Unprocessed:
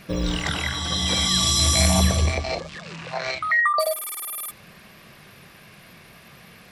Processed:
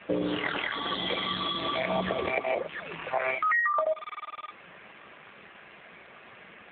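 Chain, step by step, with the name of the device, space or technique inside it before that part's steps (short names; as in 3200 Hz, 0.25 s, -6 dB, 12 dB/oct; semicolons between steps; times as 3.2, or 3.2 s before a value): dynamic EQ 390 Hz, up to +5 dB, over -47 dBFS, Q 3; voicemail (BPF 310–3000 Hz; compressor 10:1, threshold -26 dBFS, peak gain reduction 10 dB; gain +4 dB; AMR-NB 7.4 kbps 8000 Hz)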